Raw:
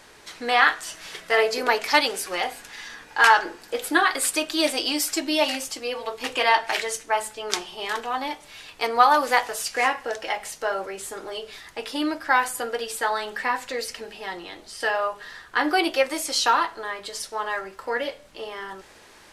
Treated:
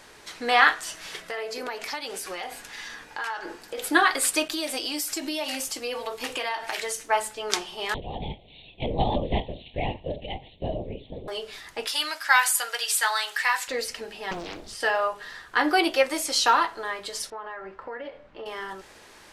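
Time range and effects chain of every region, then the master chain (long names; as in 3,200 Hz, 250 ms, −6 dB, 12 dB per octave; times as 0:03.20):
0:01.22–0:03.78: downward compressor 4 to 1, threshold −31 dBFS + one half of a high-frequency compander decoder only
0:04.48–0:07.09: noise gate with hold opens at −31 dBFS, closes at −36 dBFS + high-shelf EQ 9,800 Hz +8 dB + downward compressor, threshold −26 dBFS
0:07.94–0:11.28: linear-prediction vocoder at 8 kHz whisper + Butterworth band-reject 1,400 Hz, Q 0.54
0:11.87–0:13.68: high-pass filter 990 Hz + high-shelf EQ 2,100 Hz +9.5 dB
0:14.31–0:14.75: low-shelf EQ 300 Hz +11.5 dB + highs frequency-modulated by the lows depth 0.95 ms
0:17.30–0:18.46: low-pass filter 2,000 Hz + downward compressor 4 to 1, threshold −34 dBFS
whole clip: no processing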